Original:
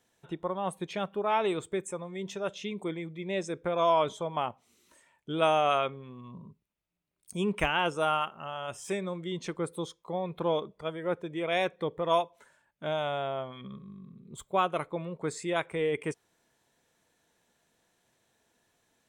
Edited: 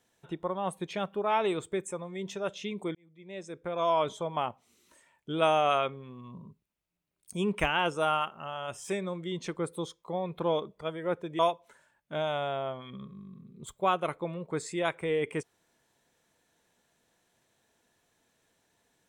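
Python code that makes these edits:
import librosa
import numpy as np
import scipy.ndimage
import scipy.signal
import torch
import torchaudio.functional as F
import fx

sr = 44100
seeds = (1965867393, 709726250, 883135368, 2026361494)

y = fx.edit(x, sr, fx.fade_in_span(start_s=2.95, length_s=1.24),
    fx.cut(start_s=11.39, length_s=0.71), tone=tone)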